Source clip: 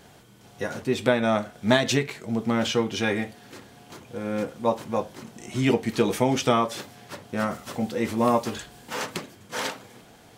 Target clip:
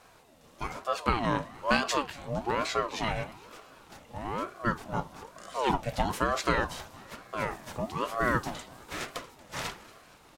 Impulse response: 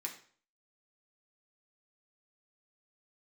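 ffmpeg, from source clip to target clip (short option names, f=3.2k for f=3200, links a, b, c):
-filter_complex "[0:a]asplit=6[a][b][c][d][e][f];[b]adelay=233,afreqshift=32,volume=-21.5dB[g];[c]adelay=466,afreqshift=64,volume=-25.8dB[h];[d]adelay=699,afreqshift=96,volume=-30.1dB[i];[e]adelay=932,afreqshift=128,volume=-34.4dB[j];[f]adelay=1165,afreqshift=160,volume=-38.7dB[k];[a][g][h][i][j][k]amix=inputs=6:normalize=0,aeval=exprs='val(0)*sin(2*PI*630*n/s+630*0.45/1.1*sin(2*PI*1.1*n/s))':c=same,volume=-3dB"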